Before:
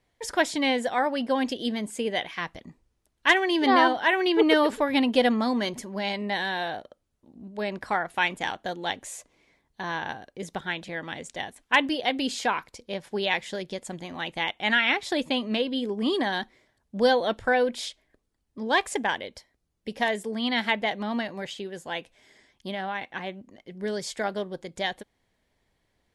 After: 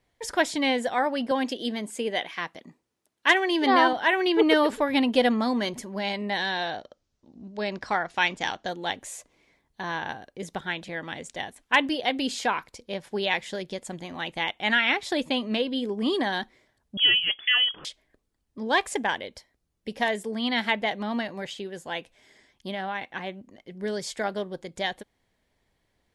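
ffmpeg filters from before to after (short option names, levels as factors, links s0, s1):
-filter_complex "[0:a]asettb=1/sr,asplit=3[s0][s1][s2];[s0]atrim=end=1.314[s3];[s1]atrim=start=1.31:end=3.93,asetpts=PTS-STARTPTS,afade=t=in:d=0.004:c=qsin,afade=t=out:st=2.616:d=0.004:c=qsin,highpass=200[s4];[s2]atrim=start=3.926[s5];[s3][s4]acrossfade=d=0.004:c1=hsin:c2=qsin[s6];[s6][s5]acrossfade=d=0.004:c1=qsin:c2=hsin,asettb=1/sr,asplit=3[s7][s8][s9];[s7]atrim=end=6.374[s10];[s8]atrim=start=6.37:end=8.69,asetpts=PTS-STARTPTS,afade=t=in:d=0.004:c=qsin,afade=t=out:st=2.316:d=0.004:c=qsin,lowpass=f=5700:t=q:w=2.3[s11];[s9]atrim=start=8.686[s12];[s10][s11]acrossfade=d=0.004:c1=hsin:c2=qsin[s13];[s13][s12]acrossfade=d=0.004:c1=qsin:c2=hsin,asettb=1/sr,asplit=3[s14][s15][s16];[s14]atrim=end=16.974[s17];[s15]atrim=start=16.97:end=17.85,asetpts=PTS-STARTPTS,afade=t=in:d=0.004:c=qsin,afade=t=out:st=0.876:d=0.004:c=qsin,lowpass=f=3000:t=q:w=0.5098,lowpass=f=3000:t=q:w=0.6013,lowpass=f=3000:t=q:w=0.9,lowpass=f=3000:t=q:w=2.563,afreqshift=-3500[s18];[s16]atrim=start=17.846[s19];[s17][s18]acrossfade=d=0.004:c1=hsin:c2=qsin[s20];[s20][s19]acrossfade=d=0.004:c1=qsin:c2=hsin"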